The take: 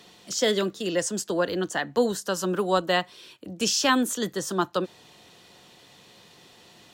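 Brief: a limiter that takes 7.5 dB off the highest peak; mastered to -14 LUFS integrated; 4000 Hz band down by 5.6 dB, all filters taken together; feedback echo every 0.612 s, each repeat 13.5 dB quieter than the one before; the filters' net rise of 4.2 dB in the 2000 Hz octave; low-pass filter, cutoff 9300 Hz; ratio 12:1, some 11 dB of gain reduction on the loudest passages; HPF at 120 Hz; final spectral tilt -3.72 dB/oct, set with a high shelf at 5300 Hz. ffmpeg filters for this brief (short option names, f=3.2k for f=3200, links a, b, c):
-af "highpass=120,lowpass=9.3k,equalizer=f=2k:t=o:g=7.5,equalizer=f=4k:t=o:g=-8.5,highshelf=f=5.3k:g=-6,acompressor=threshold=-27dB:ratio=12,alimiter=level_in=0.5dB:limit=-24dB:level=0:latency=1,volume=-0.5dB,aecho=1:1:612|1224:0.211|0.0444,volume=21dB"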